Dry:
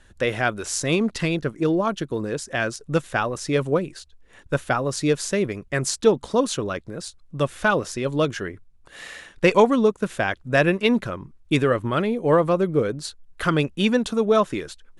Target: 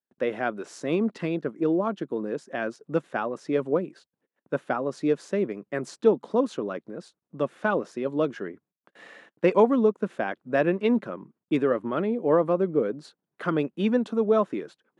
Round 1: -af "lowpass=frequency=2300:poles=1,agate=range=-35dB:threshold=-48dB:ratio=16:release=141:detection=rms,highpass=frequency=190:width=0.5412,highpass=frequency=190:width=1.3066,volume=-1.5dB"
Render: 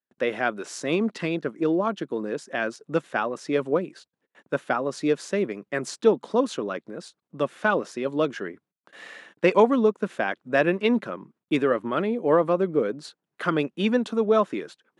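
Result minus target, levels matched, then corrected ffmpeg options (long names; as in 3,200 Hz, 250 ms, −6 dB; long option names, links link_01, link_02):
2,000 Hz band +4.0 dB
-af "lowpass=frequency=840:poles=1,agate=range=-35dB:threshold=-48dB:ratio=16:release=141:detection=rms,highpass=frequency=190:width=0.5412,highpass=frequency=190:width=1.3066,volume=-1.5dB"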